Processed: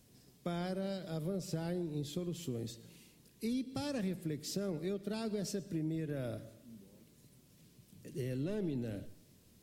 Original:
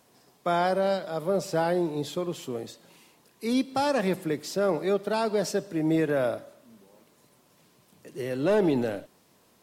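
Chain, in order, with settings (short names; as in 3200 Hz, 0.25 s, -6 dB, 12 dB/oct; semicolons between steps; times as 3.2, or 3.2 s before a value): passive tone stack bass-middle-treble 10-0-1; compressor, threshold -52 dBFS, peak gain reduction 12.5 dB; on a send: reverb RT60 0.70 s, pre-delay 0.103 s, DRR 20 dB; on the sum: gain +17.5 dB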